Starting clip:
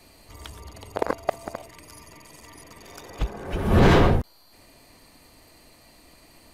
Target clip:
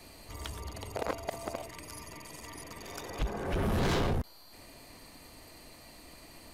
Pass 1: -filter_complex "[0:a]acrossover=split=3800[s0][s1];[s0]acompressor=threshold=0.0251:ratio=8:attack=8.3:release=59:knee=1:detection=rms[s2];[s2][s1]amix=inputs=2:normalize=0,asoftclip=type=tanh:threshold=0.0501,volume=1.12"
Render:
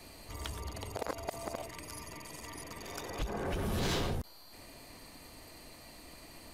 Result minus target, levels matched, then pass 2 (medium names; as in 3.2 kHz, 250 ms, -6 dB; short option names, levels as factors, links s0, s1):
compression: peak gain reduction +8 dB
-filter_complex "[0:a]acrossover=split=3800[s0][s1];[s0]acompressor=threshold=0.0708:ratio=8:attack=8.3:release=59:knee=1:detection=rms[s2];[s2][s1]amix=inputs=2:normalize=0,asoftclip=type=tanh:threshold=0.0501,volume=1.12"